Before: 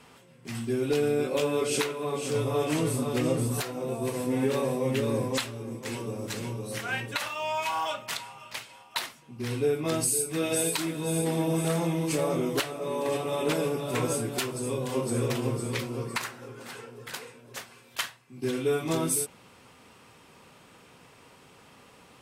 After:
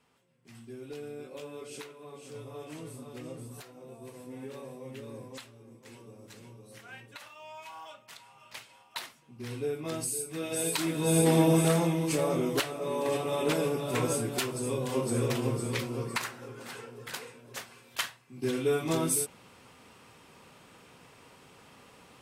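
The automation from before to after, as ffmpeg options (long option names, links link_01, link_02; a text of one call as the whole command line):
ffmpeg -i in.wav -af "volume=5.5dB,afade=type=in:start_time=8.15:duration=0.42:silence=0.354813,afade=type=in:start_time=10.51:duration=0.85:silence=0.237137,afade=type=out:start_time=11.36:duration=0.61:silence=0.473151" out.wav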